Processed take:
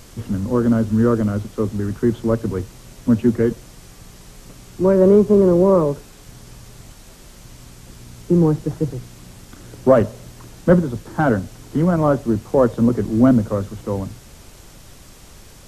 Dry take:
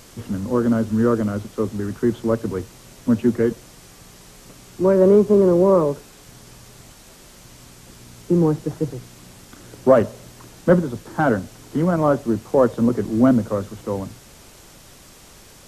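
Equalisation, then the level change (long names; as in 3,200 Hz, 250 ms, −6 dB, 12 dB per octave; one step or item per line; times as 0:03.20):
low-shelf EQ 130 Hz +9 dB
0.0 dB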